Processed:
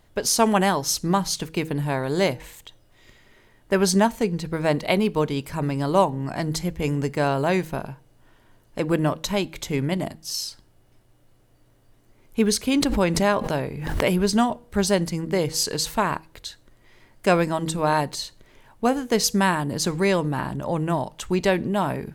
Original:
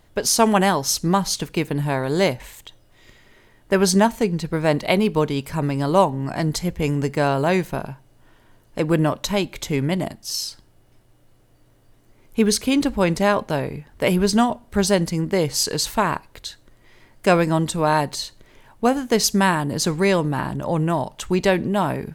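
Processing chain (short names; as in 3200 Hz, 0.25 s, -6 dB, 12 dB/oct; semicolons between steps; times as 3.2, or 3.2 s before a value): de-hum 160.2 Hz, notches 3; 12.74–14.1 backwards sustainer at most 46 dB/s; gain -2.5 dB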